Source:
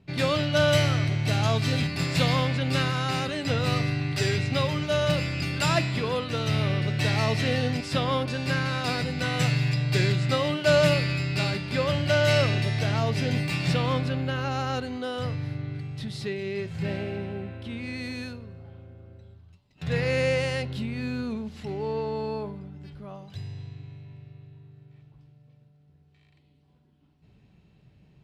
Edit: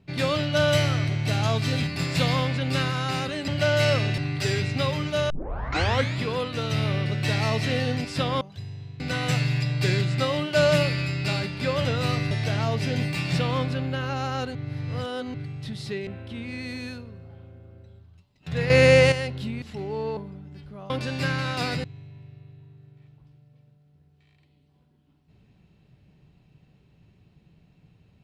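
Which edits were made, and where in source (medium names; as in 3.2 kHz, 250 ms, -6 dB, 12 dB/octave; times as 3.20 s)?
3.48–3.94 s: swap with 11.96–12.66 s
5.06 s: tape start 0.88 s
8.17–9.11 s: swap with 23.19–23.78 s
14.90–15.69 s: reverse
16.42–17.42 s: delete
20.05–20.47 s: gain +9 dB
20.97–21.52 s: delete
22.07–22.46 s: delete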